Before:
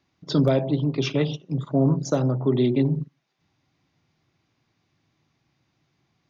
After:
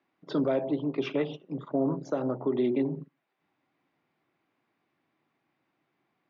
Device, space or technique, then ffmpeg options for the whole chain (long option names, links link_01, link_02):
DJ mixer with the lows and highs turned down: -filter_complex "[0:a]acrossover=split=220 2800:gain=0.0794 1 0.1[link_01][link_02][link_03];[link_01][link_02][link_03]amix=inputs=3:normalize=0,alimiter=limit=-16.5dB:level=0:latency=1:release=121,volume=-1.5dB"